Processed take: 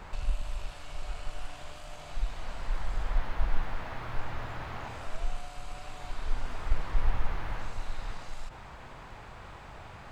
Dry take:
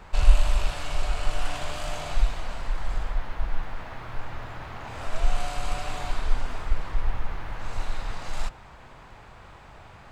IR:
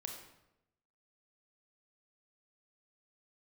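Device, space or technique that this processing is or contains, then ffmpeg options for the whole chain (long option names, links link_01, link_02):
de-esser from a sidechain: -filter_complex "[0:a]asplit=2[link_01][link_02];[link_02]highpass=5100,apad=whole_len=446234[link_03];[link_01][link_03]sidechaincompress=threshold=-57dB:ratio=10:attack=3:release=52,volume=1dB"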